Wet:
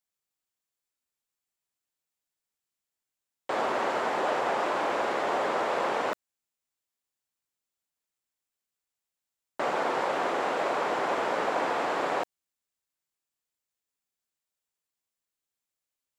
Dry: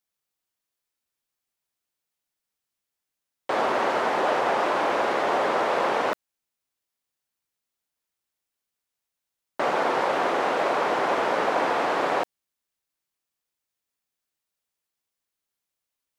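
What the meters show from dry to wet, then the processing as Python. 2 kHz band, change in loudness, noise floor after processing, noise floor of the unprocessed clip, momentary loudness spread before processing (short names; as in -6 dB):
-4.5 dB, -4.5 dB, under -85 dBFS, -85 dBFS, 6 LU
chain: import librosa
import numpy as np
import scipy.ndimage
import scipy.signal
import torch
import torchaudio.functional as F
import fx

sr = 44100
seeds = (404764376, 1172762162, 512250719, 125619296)

y = fx.peak_eq(x, sr, hz=7400.0, db=5.5, octaves=0.2)
y = F.gain(torch.from_numpy(y), -4.5).numpy()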